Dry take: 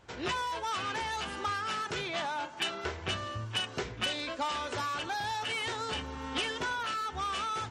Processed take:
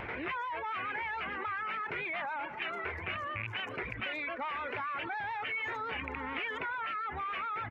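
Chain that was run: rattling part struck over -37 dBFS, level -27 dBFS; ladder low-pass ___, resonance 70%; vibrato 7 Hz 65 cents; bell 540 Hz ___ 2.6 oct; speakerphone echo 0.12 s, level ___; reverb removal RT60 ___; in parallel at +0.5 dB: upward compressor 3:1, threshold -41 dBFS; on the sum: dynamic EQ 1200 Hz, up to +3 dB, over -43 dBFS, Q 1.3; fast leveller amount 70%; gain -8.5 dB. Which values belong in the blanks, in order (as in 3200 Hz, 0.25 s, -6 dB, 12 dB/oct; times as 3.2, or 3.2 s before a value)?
2400 Hz, +4 dB, -20 dB, 0.55 s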